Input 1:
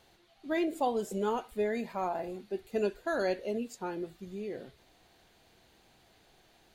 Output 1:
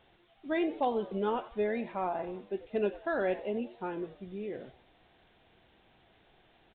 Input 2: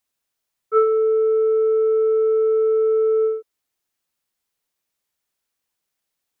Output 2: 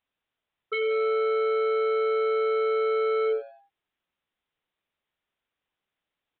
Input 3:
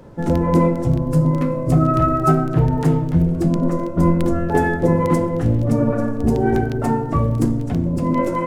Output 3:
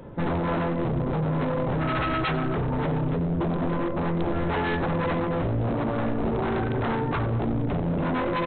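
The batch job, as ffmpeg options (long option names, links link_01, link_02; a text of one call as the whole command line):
ffmpeg -i in.wav -filter_complex "[0:a]acompressor=threshold=-18dB:ratio=12,aresample=8000,aeval=exprs='0.0944*(abs(mod(val(0)/0.0944+3,4)-2)-1)':channel_layout=same,aresample=44100,asplit=4[link_01][link_02][link_03][link_04];[link_02]adelay=92,afreqshift=120,volume=-18dB[link_05];[link_03]adelay=184,afreqshift=240,volume=-26.6dB[link_06];[link_04]adelay=276,afreqshift=360,volume=-35.3dB[link_07];[link_01][link_05][link_06][link_07]amix=inputs=4:normalize=0" out.wav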